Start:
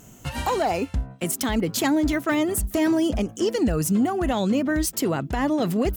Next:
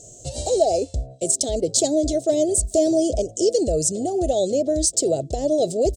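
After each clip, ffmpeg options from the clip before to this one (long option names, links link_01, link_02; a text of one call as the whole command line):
ffmpeg -i in.wav -af "firequalizer=gain_entry='entry(130,0);entry(200,-12);entry(370,4);entry(640,10);entry(990,-28);entry(1700,-27);entry(3900,4);entry(8100,13);entry(12000,-18)':delay=0.05:min_phase=1" out.wav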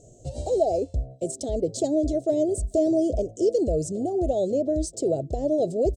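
ffmpeg -i in.wav -af "tiltshelf=frequency=1300:gain=7.5,volume=-8.5dB" out.wav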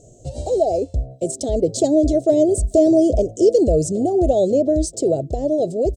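ffmpeg -i in.wav -af "dynaudnorm=framelen=290:gausssize=9:maxgain=4dB,volume=4dB" out.wav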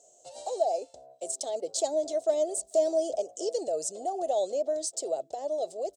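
ffmpeg -i in.wav -af "highpass=frequency=1000:width_type=q:width=2.3,volume=-4.5dB" out.wav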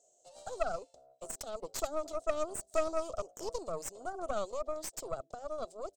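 ffmpeg -i in.wav -af "aeval=exprs='0.188*(cos(1*acos(clip(val(0)/0.188,-1,1)))-cos(1*PI/2))+0.0376*(cos(3*acos(clip(val(0)/0.188,-1,1)))-cos(3*PI/2))+0.0376*(cos(4*acos(clip(val(0)/0.188,-1,1)))-cos(4*PI/2))+0.0075*(cos(5*acos(clip(val(0)/0.188,-1,1)))-cos(5*PI/2))':channel_layout=same,volume=-5dB" out.wav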